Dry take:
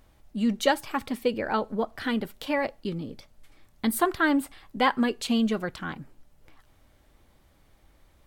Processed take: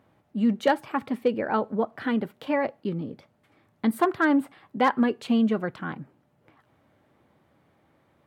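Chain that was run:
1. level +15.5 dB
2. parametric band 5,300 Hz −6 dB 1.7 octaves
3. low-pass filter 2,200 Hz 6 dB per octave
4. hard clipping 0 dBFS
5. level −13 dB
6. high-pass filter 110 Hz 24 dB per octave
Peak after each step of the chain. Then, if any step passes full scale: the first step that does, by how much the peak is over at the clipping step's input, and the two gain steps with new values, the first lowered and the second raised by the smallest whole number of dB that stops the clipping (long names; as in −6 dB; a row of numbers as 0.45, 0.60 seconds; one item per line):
+7.0, +6.5, +5.5, 0.0, −13.0, −10.0 dBFS
step 1, 5.5 dB
step 1 +9.5 dB, step 5 −7 dB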